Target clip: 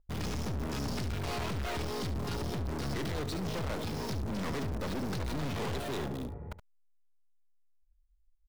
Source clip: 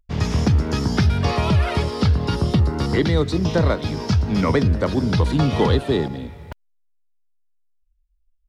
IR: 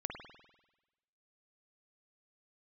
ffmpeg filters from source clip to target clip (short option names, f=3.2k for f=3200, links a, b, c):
-filter_complex "[0:a]acrossover=split=1400[a][b];[b]acrusher=bits=6:mix=0:aa=0.000001[c];[a][c]amix=inputs=2:normalize=0,aeval=exprs='(tanh(39.8*val(0)+0.4)-tanh(0.4))/39.8':c=same,aecho=1:1:71:0.237,volume=-2dB"